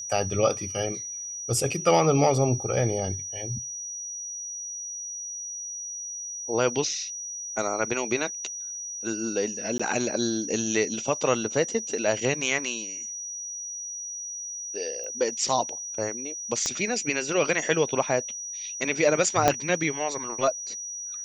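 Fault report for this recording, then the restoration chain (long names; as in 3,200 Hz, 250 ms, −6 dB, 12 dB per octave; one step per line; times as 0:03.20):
whistle 5,800 Hz −33 dBFS
0:09.78–0:09.79: drop-out 15 ms
0:15.04: click −26 dBFS
0:16.66: click −14 dBFS
0:19.48: click −4 dBFS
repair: click removal
notch filter 5,800 Hz, Q 30
repair the gap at 0:09.78, 15 ms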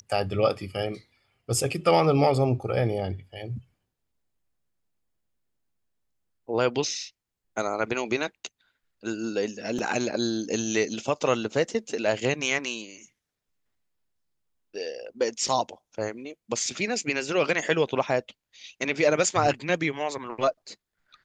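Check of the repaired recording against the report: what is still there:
0:16.66: click
0:19.48: click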